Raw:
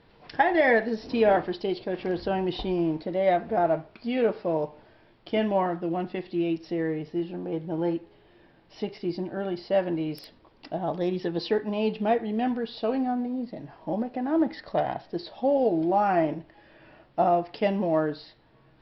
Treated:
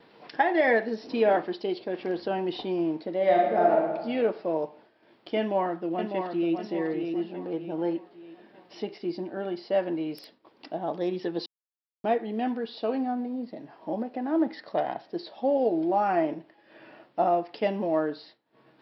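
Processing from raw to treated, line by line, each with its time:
0:03.17–0:03.93: thrown reverb, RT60 1.3 s, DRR −1 dB
0:05.38–0:06.54: delay throw 600 ms, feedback 40%, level −5.5 dB
0:11.46–0:12.04: silence
whole clip: upward compression, threshold −40 dBFS; Chebyshev high-pass filter 260 Hz, order 2; downward expander −48 dBFS; level −1 dB

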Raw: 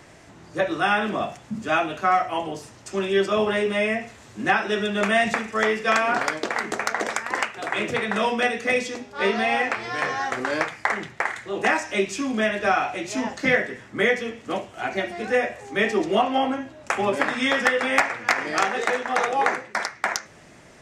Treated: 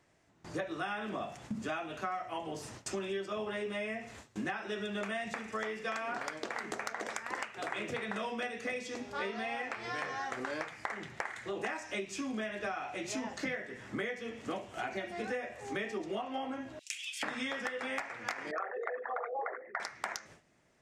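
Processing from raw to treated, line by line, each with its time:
0:16.79–0:17.23: Butterworth high-pass 2,700 Hz
0:18.51–0:19.80: spectral envelope exaggerated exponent 3
whole clip: noise gate with hold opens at −36 dBFS; downward compressor 8 to 1, threshold −35 dBFS

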